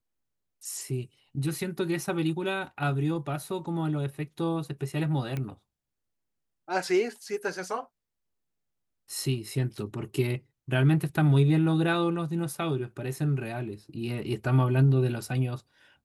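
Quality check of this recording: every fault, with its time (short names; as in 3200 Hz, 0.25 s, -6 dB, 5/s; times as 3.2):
5.37 pop -20 dBFS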